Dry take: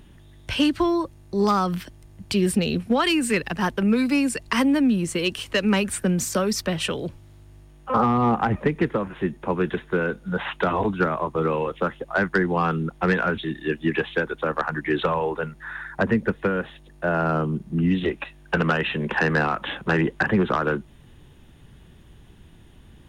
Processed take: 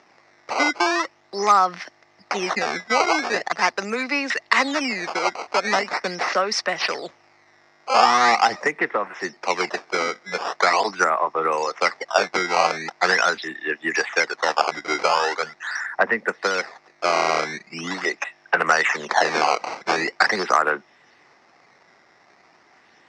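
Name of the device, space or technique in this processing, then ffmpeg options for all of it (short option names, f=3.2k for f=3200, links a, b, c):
circuit-bent sampling toy: -af "acrusher=samples=14:mix=1:aa=0.000001:lfo=1:lforange=22.4:lforate=0.42,highpass=570,equalizer=f=740:t=q:w=4:g=6,equalizer=f=1.2k:t=q:w=4:g=4,equalizer=f=2k:t=q:w=4:g=9,equalizer=f=3.2k:t=q:w=4:g=-7,equalizer=f=5.4k:t=q:w=4:g=8,lowpass=f=5.7k:w=0.5412,lowpass=f=5.7k:w=1.3066,volume=3.5dB"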